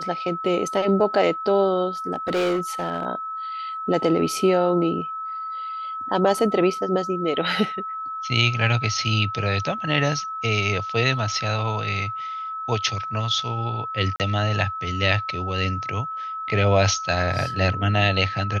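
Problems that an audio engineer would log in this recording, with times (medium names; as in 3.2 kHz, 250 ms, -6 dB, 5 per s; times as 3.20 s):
whine 1.3 kHz -28 dBFS
2.14–3.05 s: clipped -18.5 dBFS
14.16–14.20 s: dropout 38 ms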